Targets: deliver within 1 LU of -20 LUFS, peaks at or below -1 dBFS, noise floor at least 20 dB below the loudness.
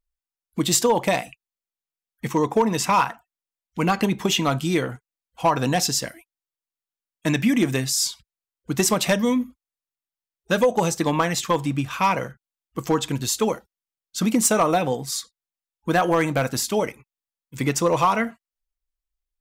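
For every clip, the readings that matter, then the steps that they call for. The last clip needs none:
clipped samples 0.3%; clipping level -11.0 dBFS; loudness -22.5 LUFS; peak level -11.0 dBFS; loudness target -20.0 LUFS
-> clip repair -11 dBFS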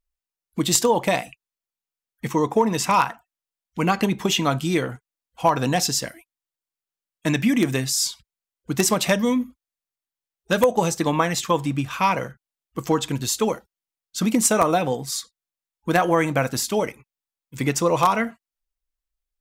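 clipped samples 0.0%; loudness -22.0 LUFS; peak level -2.0 dBFS; loudness target -20.0 LUFS
-> trim +2 dB; peak limiter -1 dBFS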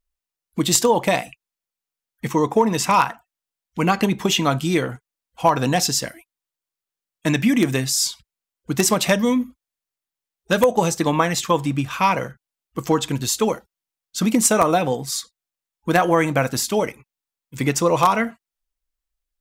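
loudness -20.0 LUFS; peak level -1.0 dBFS; noise floor -89 dBFS

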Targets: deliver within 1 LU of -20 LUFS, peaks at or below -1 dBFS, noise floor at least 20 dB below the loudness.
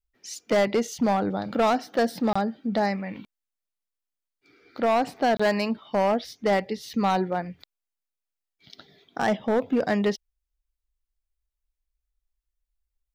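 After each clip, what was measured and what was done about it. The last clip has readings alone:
clipped samples 1.3%; clipping level -17.0 dBFS; dropouts 2; longest dropout 25 ms; loudness -25.5 LUFS; peak level -17.0 dBFS; loudness target -20.0 LUFS
-> clip repair -17 dBFS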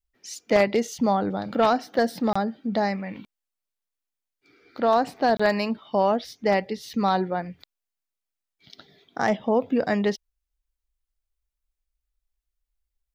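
clipped samples 0.0%; dropouts 2; longest dropout 25 ms
-> interpolate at 2.33/5.37 s, 25 ms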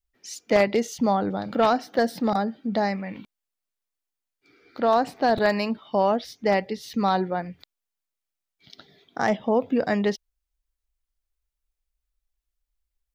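dropouts 0; loudness -24.5 LUFS; peak level -8.0 dBFS; loudness target -20.0 LUFS
-> trim +4.5 dB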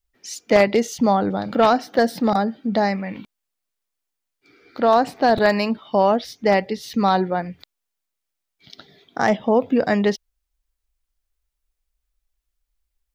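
loudness -20.0 LUFS; peak level -3.5 dBFS; noise floor -81 dBFS

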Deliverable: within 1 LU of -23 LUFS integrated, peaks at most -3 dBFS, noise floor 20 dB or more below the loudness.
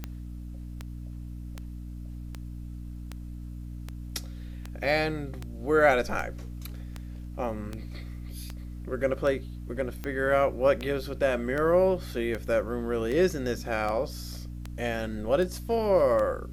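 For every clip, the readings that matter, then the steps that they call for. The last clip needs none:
clicks found 22; hum 60 Hz; highest harmonic 300 Hz; hum level -36 dBFS; loudness -28.0 LUFS; peak level -8.5 dBFS; loudness target -23.0 LUFS
-> de-click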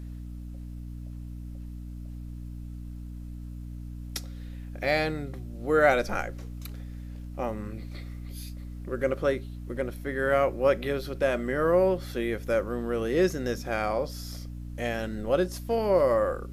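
clicks found 0; hum 60 Hz; highest harmonic 300 Hz; hum level -36 dBFS
-> hum notches 60/120/180/240/300 Hz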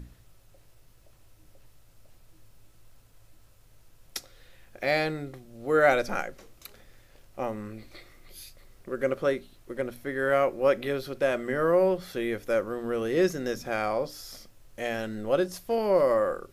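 hum not found; loudness -27.5 LUFS; peak level -8.5 dBFS; loudness target -23.0 LUFS
-> trim +4.5 dB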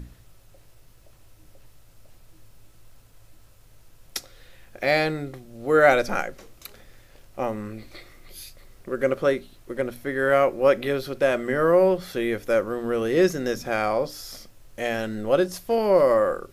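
loudness -23.0 LUFS; peak level -4.0 dBFS; noise floor -53 dBFS

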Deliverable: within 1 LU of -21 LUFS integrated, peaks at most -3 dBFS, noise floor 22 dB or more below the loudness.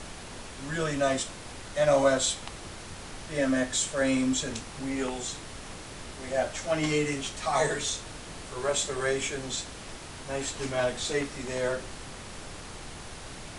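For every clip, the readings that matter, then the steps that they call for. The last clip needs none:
noise floor -43 dBFS; noise floor target -51 dBFS; loudness -29.0 LUFS; peak level -12.0 dBFS; loudness target -21.0 LUFS
-> noise print and reduce 8 dB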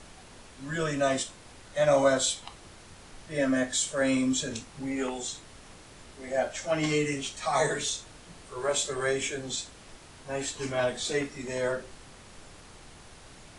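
noise floor -51 dBFS; loudness -29.0 LUFS; peak level -12.5 dBFS; loudness target -21.0 LUFS
-> trim +8 dB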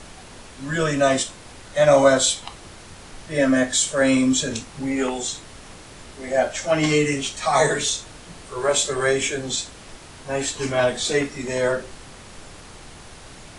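loudness -21.0 LUFS; peak level -4.5 dBFS; noise floor -43 dBFS

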